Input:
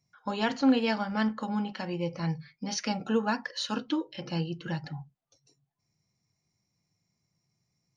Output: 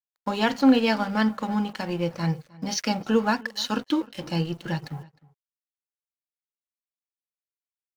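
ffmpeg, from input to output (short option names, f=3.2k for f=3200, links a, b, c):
-filter_complex "[0:a]acrusher=bits=10:mix=0:aa=0.000001,aeval=exprs='sgn(val(0))*max(abs(val(0))-0.00422,0)':c=same,asplit=2[a][b];[b]adelay=309,volume=-22dB,highshelf=f=4k:g=-6.95[c];[a][c]amix=inputs=2:normalize=0,volume=6dB"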